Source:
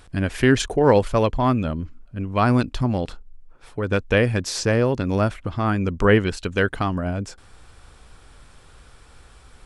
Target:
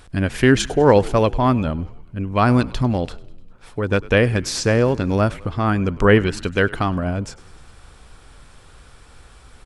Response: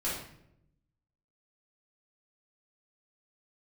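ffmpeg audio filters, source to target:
-filter_complex "[0:a]asplit=6[a][b][c][d][e][f];[b]adelay=100,afreqshift=-62,volume=-21dB[g];[c]adelay=200,afreqshift=-124,volume=-25.2dB[h];[d]adelay=300,afreqshift=-186,volume=-29.3dB[i];[e]adelay=400,afreqshift=-248,volume=-33.5dB[j];[f]adelay=500,afreqshift=-310,volume=-37.6dB[k];[a][g][h][i][j][k]amix=inputs=6:normalize=0,volume=2.5dB"

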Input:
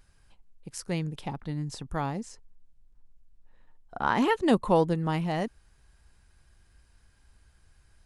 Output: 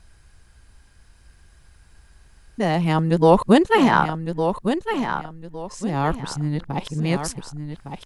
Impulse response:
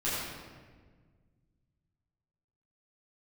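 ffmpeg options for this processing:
-af "areverse,aecho=1:1:1159|2318|3477:0.398|0.107|0.029,volume=8.5dB"

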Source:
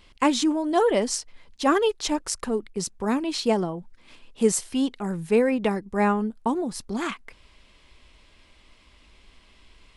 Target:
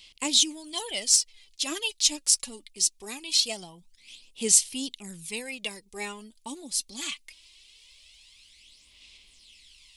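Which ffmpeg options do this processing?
-af "aexciter=amount=14.3:drive=4.1:freq=2.3k,aphaser=in_gain=1:out_gain=1:delay=3.6:decay=0.54:speed=0.22:type=sinusoidal,volume=-17.5dB"

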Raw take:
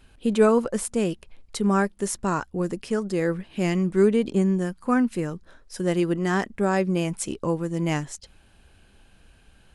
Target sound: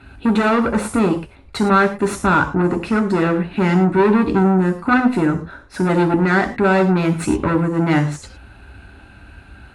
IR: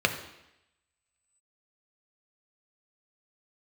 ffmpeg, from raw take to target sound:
-filter_complex "[0:a]aeval=exprs='(tanh(22.4*val(0)+0.45)-tanh(0.45))/22.4':c=same[a];[1:a]atrim=start_sample=2205,atrim=end_sample=3087,asetrate=24696,aresample=44100[b];[a][b]afir=irnorm=-1:irlink=0"

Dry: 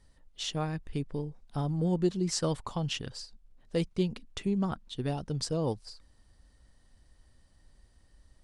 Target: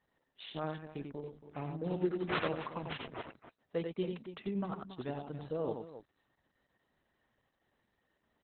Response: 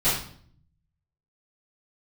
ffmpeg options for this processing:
-filter_complex "[0:a]aemphasis=mode=production:type=bsi,asettb=1/sr,asplit=3[a][b][c];[a]atrim=end=1.224[d];[b]atrim=start=1.22:end=3.23,asetpts=PTS-STARTPTS,afade=t=in:d=0.004:c=qsin,afade=t=out:st=2.006:d=0.004:c=qsin,acrusher=samples=9:mix=1:aa=0.000001:lfo=1:lforange=9:lforate=3.3[e];[c]atrim=start=3.226[f];[d][e]acrossfade=d=0.004:c1=hsin:c2=qsin[g];[g][f]acrossfade=d=0.004:c1=qsin:c2=hsin,highpass=110,lowpass=2.1k,aecho=1:1:90.38|277:0.562|0.251,volume=-2.5dB" -ar 48000 -c:a libopus -b:a 8k

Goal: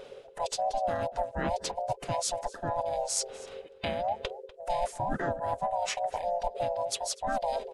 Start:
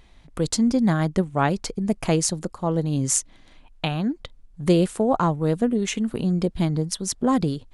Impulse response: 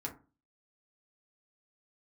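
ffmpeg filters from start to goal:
-filter_complex "[0:a]afftfilt=real='real(if(lt(b,1008),b+24*(1-2*mod(floor(b/24),2)),b),0)':imag='imag(if(lt(b,1008),b+24*(1-2*mod(floor(b/24),2)),b),0)':win_size=2048:overlap=0.75,areverse,acompressor=threshold=-37dB:ratio=4,areverse,asplit=2[a][b];[b]adelay=244.9,volume=-17dB,highshelf=f=4k:g=-5.51[c];[a][c]amix=inputs=2:normalize=0,asplit=3[d][e][f];[e]asetrate=33038,aresample=44100,atempo=1.33484,volume=-6dB[g];[f]asetrate=37084,aresample=44100,atempo=1.18921,volume=-5dB[h];[d][g][h]amix=inputs=3:normalize=0,volume=3.5dB"

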